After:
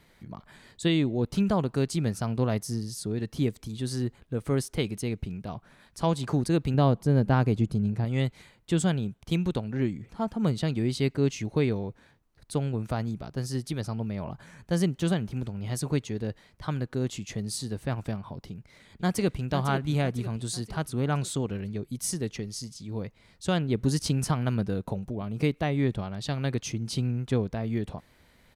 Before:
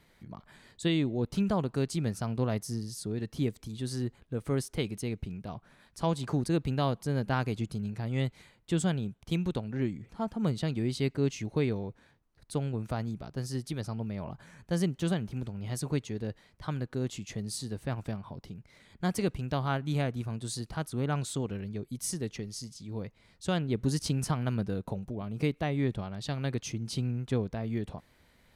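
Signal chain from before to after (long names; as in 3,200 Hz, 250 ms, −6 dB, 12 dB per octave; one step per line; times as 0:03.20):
0:06.74–0:08.05: tilt shelving filter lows +5 dB
0:18.49–0:19.44: delay throw 500 ms, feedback 50%, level −9.5 dB
level +3.5 dB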